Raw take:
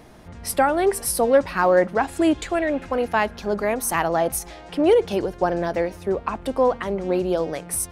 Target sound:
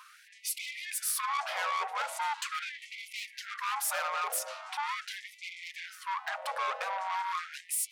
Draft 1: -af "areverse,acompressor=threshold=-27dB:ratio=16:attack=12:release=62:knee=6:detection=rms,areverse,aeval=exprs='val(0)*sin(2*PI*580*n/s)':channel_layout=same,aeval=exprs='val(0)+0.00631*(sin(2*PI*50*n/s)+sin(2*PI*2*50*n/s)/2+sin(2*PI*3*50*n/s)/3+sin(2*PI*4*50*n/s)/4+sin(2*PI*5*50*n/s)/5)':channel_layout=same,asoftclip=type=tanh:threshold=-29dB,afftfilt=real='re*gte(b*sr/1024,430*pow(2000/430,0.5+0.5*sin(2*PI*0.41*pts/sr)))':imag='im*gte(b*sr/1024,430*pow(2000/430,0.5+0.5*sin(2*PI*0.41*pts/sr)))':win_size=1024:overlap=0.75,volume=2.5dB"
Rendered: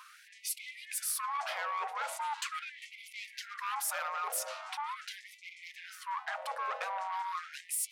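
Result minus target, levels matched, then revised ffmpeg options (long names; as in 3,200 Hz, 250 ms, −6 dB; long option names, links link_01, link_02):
downward compressor: peak gain reduction +9.5 dB
-af "areverse,acompressor=threshold=-17dB:ratio=16:attack=12:release=62:knee=6:detection=rms,areverse,aeval=exprs='val(0)*sin(2*PI*580*n/s)':channel_layout=same,aeval=exprs='val(0)+0.00631*(sin(2*PI*50*n/s)+sin(2*PI*2*50*n/s)/2+sin(2*PI*3*50*n/s)/3+sin(2*PI*4*50*n/s)/4+sin(2*PI*5*50*n/s)/5)':channel_layout=same,asoftclip=type=tanh:threshold=-29dB,afftfilt=real='re*gte(b*sr/1024,430*pow(2000/430,0.5+0.5*sin(2*PI*0.41*pts/sr)))':imag='im*gte(b*sr/1024,430*pow(2000/430,0.5+0.5*sin(2*PI*0.41*pts/sr)))':win_size=1024:overlap=0.75,volume=2.5dB"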